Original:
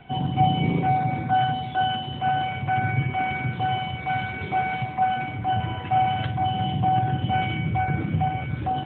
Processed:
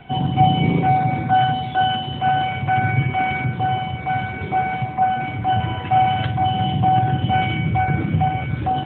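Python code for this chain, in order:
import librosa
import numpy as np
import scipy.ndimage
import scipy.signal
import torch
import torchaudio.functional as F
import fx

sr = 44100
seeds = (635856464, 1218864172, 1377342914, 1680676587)

y = fx.high_shelf(x, sr, hz=2200.0, db=-8.0, at=(3.44, 5.24))
y = y * 10.0 ** (5.0 / 20.0)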